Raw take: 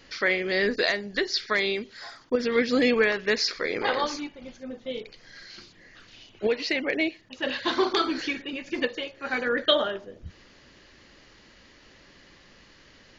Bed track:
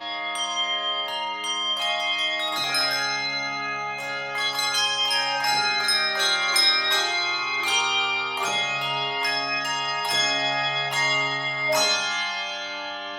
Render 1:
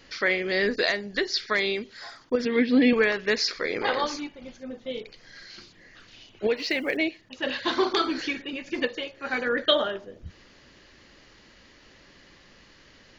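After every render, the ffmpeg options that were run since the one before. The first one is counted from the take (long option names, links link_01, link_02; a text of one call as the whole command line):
ffmpeg -i in.wav -filter_complex "[0:a]asettb=1/sr,asplit=3[link_01][link_02][link_03];[link_01]atrim=end=2.454[link_04];[link_02]atrim=start=2.45:end=2.93,asetpts=PTS-STARTPTS,afade=type=in:duration=0.004:curve=qsin,afade=type=out:start_time=0.476:duration=0.004:curve=qsin,highpass=130,equalizer=frequency=260:width_type=q:width=4:gain=7,equalizer=frequency=560:width_type=q:width=4:gain=-5,equalizer=frequency=1300:width_type=q:width=4:gain=-9,lowpass=frequency=3800:width=0.5412,lowpass=frequency=3800:width=1.3066[link_05];[link_03]atrim=start=2.926[link_06];[link_04][link_05]acrossfade=duration=0.004:curve1=hsin:curve2=qsin[link_07];[link_07][link_06]acrossfade=duration=0.004:curve1=qsin:curve2=hsin,asettb=1/sr,asplit=3[link_08][link_09][link_10];[link_08]atrim=end=6.564[link_11];[link_09]atrim=start=6.56:end=6.97,asetpts=PTS-STARTPTS,afade=type=in:duration=0.004:curve=qsin,afade=type=out:start_time=0.406:duration=0.004:curve=qsin,acrusher=bits=8:mode=log:mix=0:aa=0.000001[link_12];[link_10]atrim=start=6.966[link_13];[link_11][link_12]acrossfade=duration=0.004:curve1=hsin:curve2=qsin[link_14];[link_14][link_13]acrossfade=duration=0.004:curve1=qsin:curve2=hsin" out.wav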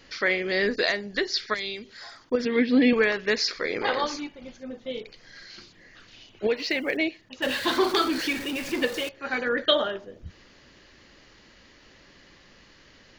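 ffmpeg -i in.wav -filter_complex "[0:a]asettb=1/sr,asplit=3[link_01][link_02][link_03];[link_01]atrim=end=1.544[link_04];[link_02]atrim=start=1.54:end=2.22,asetpts=PTS-STARTPTS,afade=type=in:duration=0.004:curve=qsin,afade=type=out:start_time=0.676:duration=0.004:curve=qsin,acrossover=split=130|3000[link_05][link_06][link_07];[link_06]acompressor=threshold=-43dB:ratio=2:attack=3.2:release=140:knee=2.83:detection=peak[link_08];[link_05][link_08][link_07]amix=inputs=3:normalize=0[link_09];[link_03]atrim=start=2.216[link_10];[link_04][link_09]acrossfade=duration=0.004:curve1=hsin:curve2=qsin[link_11];[link_11][link_10]acrossfade=duration=0.004:curve1=qsin:curve2=hsin,asettb=1/sr,asplit=3[link_12][link_13][link_14];[link_12]atrim=end=7.424[link_15];[link_13]atrim=start=7.42:end=9.09,asetpts=PTS-STARTPTS,afade=type=in:duration=0.004:curve=qsin,afade=type=out:start_time=1.666:duration=0.004:curve=qsin,aeval=exprs='val(0)+0.5*0.0266*sgn(val(0))':channel_layout=same[link_16];[link_14]atrim=start=9.086[link_17];[link_15][link_16]acrossfade=duration=0.004:curve1=hsin:curve2=qsin[link_18];[link_18][link_17]acrossfade=duration=0.004:curve1=qsin:curve2=hsin" out.wav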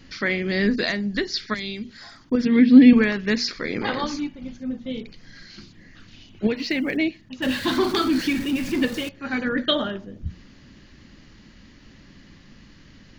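ffmpeg -i in.wav -af "lowshelf=frequency=320:width_type=q:width=1.5:gain=10.5,bandreject=frequency=60:width_type=h:width=6,bandreject=frequency=120:width_type=h:width=6,bandreject=frequency=180:width_type=h:width=6,bandreject=frequency=240:width_type=h:width=6" out.wav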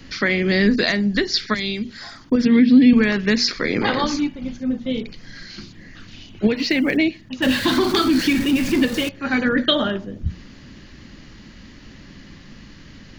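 ffmpeg -i in.wav -filter_complex "[0:a]asplit=2[link_01][link_02];[link_02]alimiter=limit=-13.5dB:level=0:latency=1:release=150,volume=1dB[link_03];[link_01][link_03]amix=inputs=2:normalize=0,acrossover=split=220|3000[link_04][link_05][link_06];[link_05]acompressor=threshold=-16dB:ratio=6[link_07];[link_04][link_07][link_06]amix=inputs=3:normalize=0" out.wav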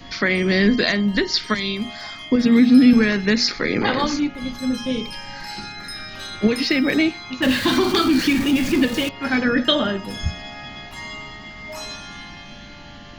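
ffmpeg -i in.wav -i bed.wav -filter_complex "[1:a]volume=-12dB[link_01];[0:a][link_01]amix=inputs=2:normalize=0" out.wav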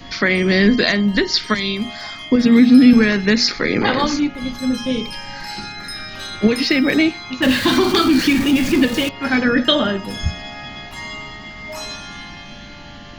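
ffmpeg -i in.wav -af "volume=3dB,alimiter=limit=-2dB:level=0:latency=1" out.wav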